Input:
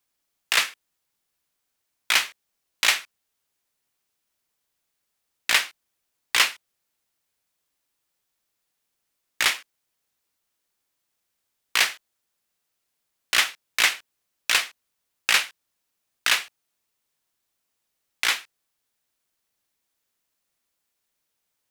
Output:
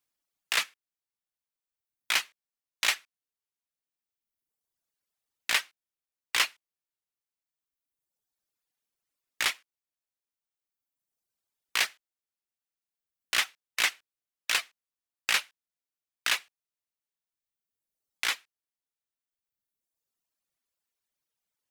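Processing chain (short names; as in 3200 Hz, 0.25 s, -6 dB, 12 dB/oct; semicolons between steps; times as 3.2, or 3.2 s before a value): reverb removal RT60 1.7 s; gain -6 dB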